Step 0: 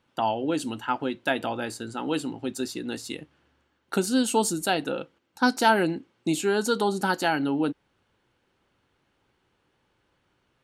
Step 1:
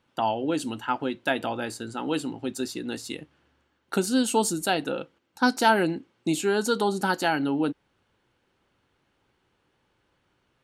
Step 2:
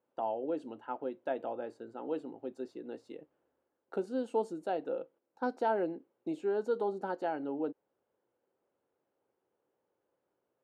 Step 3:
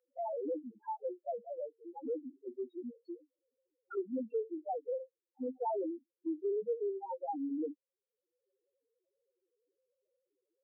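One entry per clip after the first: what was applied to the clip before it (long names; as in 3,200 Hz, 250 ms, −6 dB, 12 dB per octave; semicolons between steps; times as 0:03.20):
no processing that can be heard
resonant band-pass 520 Hz, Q 1.9; level −4 dB
spectral peaks only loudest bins 1; noise reduction from a noise print of the clip's start 17 dB; multiband upward and downward compressor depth 70%; level +5.5 dB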